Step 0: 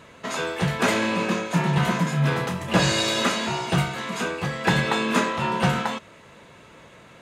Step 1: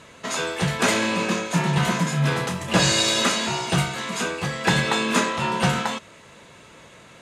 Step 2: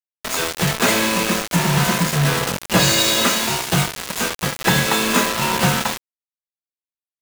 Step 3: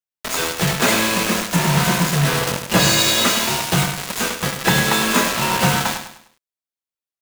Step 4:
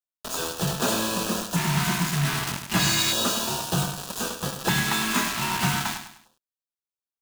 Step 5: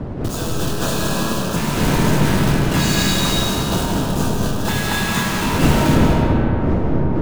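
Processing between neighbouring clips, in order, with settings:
LPF 10000 Hz 12 dB/oct; high shelf 4900 Hz +10.5 dB
bit-crush 4-bit; gain +3 dB
feedback echo 0.101 s, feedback 37%, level -9 dB
LFO notch square 0.32 Hz 510–2100 Hz; gain -6.5 dB
wind noise 270 Hz -25 dBFS; digital reverb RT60 4.9 s, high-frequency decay 0.3×, pre-delay 0.115 s, DRR -3 dB

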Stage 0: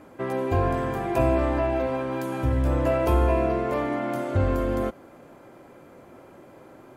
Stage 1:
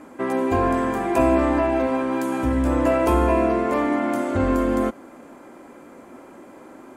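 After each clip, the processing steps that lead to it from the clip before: ten-band EQ 125 Hz -9 dB, 250 Hz +10 dB, 1000 Hz +5 dB, 2000 Hz +4 dB, 8000 Hz +9 dB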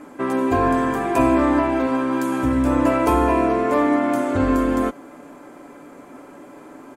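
comb 6.9 ms, depth 42%; gain +1.5 dB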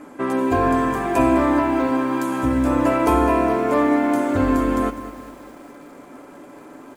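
lo-fi delay 0.205 s, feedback 55%, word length 7-bit, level -13 dB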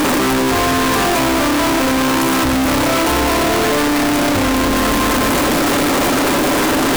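infinite clipping; gain +5.5 dB

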